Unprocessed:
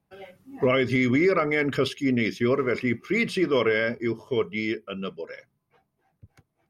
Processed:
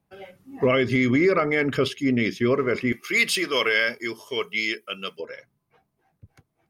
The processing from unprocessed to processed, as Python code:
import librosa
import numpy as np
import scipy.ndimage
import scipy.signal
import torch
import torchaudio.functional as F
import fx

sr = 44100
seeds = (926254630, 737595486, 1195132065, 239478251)

y = fx.tilt_eq(x, sr, slope=4.5, at=(2.92, 5.2))
y = y * librosa.db_to_amplitude(1.5)